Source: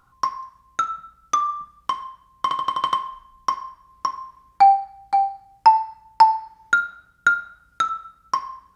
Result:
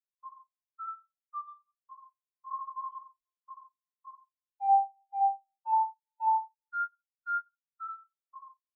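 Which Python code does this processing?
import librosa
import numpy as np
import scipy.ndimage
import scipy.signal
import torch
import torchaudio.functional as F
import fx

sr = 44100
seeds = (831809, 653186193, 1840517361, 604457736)

p1 = fx.power_curve(x, sr, exponent=0.7)
p2 = 10.0 ** (-19.5 / 20.0) * np.tanh(p1 / 10.0 ** (-19.5 / 20.0))
p3 = p2 + fx.echo_single(p2, sr, ms=70, db=-7.0, dry=0)
y = fx.spectral_expand(p3, sr, expansion=4.0)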